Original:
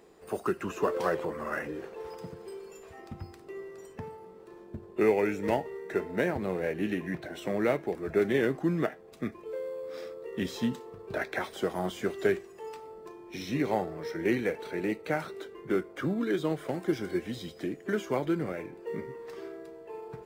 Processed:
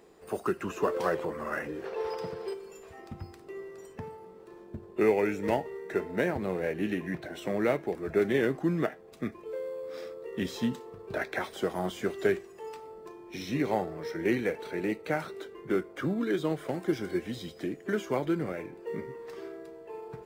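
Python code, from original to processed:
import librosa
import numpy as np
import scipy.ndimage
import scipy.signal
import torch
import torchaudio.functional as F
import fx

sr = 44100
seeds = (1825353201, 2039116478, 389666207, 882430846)

y = fx.spec_box(x, sr, start_s=1.85, length_s=0.69, low_hz=360.0, high_hz=6000.0, gain_db=8)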